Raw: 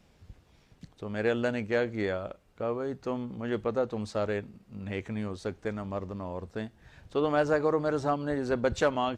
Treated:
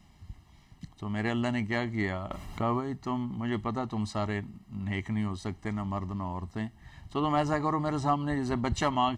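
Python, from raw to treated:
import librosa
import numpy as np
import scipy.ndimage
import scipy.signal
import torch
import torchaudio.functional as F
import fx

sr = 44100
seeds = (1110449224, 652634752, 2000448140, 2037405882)

y = x + 0.9 * np.pad(x, (int(1.0 * sr / 1000.0), 0))[:len(x)]
y = fx.env_flatten(y, sr, amount_pct=50, at=(2.3, 2.79), fade=0.02)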